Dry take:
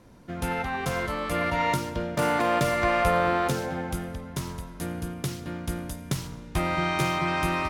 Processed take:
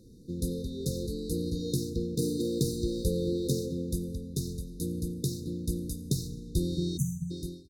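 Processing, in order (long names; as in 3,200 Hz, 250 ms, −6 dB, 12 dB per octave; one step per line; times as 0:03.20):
fade-out on the ending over 0.60 s
time-frequency box erased 0:06.97–0:07.31, 240–5,900 Hz
linear-phase brick-wall band-stop 520–3,600 Hz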